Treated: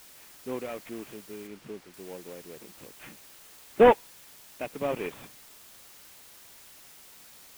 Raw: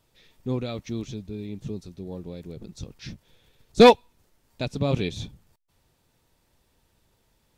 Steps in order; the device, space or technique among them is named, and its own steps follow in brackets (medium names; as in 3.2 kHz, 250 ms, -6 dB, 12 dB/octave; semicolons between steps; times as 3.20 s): army field radio (band-pass 390–3300 Hz; CVSD coder 16 kbps; white noise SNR 20 dB); 1.47–1.94 s: treble shelf 6.3 kHz -11 dB